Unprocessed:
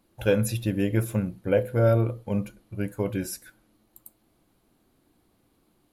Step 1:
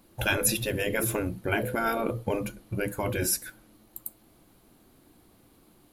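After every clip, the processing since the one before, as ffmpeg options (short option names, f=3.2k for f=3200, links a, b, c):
-af "afftfilt=real='re*lt(hypot(re,im),0.2)':imag='im*lt(hypot(re,im),0.2)':win_size=1024:overlap=0.75,highshelf=f=10k:g=5,volume=7dB"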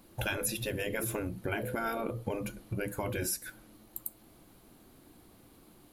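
-af "acompressor=threshold=-34dB:ratio=3,volume=1dB"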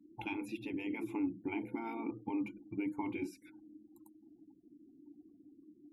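-filter_complex "[0:a]afftfilt=real='re*gte(hypot(re,im),0.00316)':imag='im*gte(hypot(re,im),0.00316)':win_size=1024:overlap=0.75,asplit=3[a][b][c];[a]bandpass=f=300:t=q:w=8,volume=0dB[d];[b]bandpass=f=870:t=q:w=8,volume=-6dB[e];[c]bandpass=f=2.24k:t=q:w=8,volume=-9dB[f];[d][e][f]amix=inputs=3:normalize=0,volume=7.5dB"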